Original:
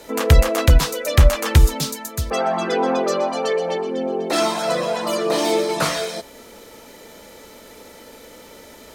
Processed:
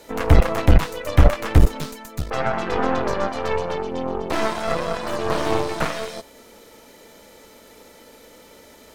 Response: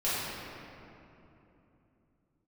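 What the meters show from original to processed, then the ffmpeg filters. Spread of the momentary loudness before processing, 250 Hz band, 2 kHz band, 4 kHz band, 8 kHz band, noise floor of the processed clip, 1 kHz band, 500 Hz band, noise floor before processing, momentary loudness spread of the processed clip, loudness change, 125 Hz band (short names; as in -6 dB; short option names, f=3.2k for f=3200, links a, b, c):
9 LU, -0.5 dB, -1.5 dB, -7.5 dB, -10.5 dB, -48 dBFS, -1.5 dB, -3.5 dB, -43 dBFS, 10 LU, -2.5 dB, -1.5 dB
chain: -filter_complex "[0:a]aeval=exprs='0.891*(cos(1*acos(clip(val(0)/0.891,-1,1)))-cos(1*PI/2))+0.0891*(cos(3*acos(clip(val(0)/0.891,-1,1)))-cos(3*PI/2))+0.2*(cos(6*acos(clip(val(0)/0.891,-1,1)))-cos(6*PI/2))':c=same,acrossover=split=2800[a][b];[b]acompressor=threshold=-34dB:ratio=4:attack=1:release=60[c];[a][c]amix=inputs=2:normalize=0,volume=-1.5dB"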